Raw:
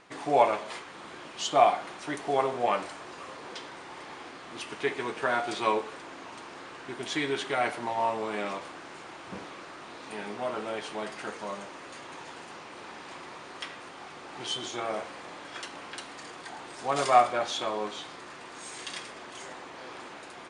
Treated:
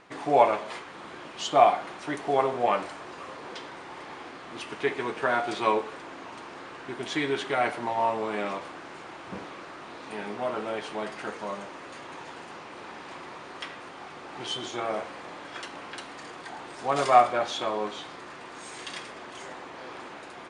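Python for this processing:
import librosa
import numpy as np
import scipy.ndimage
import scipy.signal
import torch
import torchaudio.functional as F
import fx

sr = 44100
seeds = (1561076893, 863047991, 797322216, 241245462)

y = fx.high_shelf(x, sr, hz=4000.0, db=-6.5)
y = y * 10.0 ** (2.5 / 20.0)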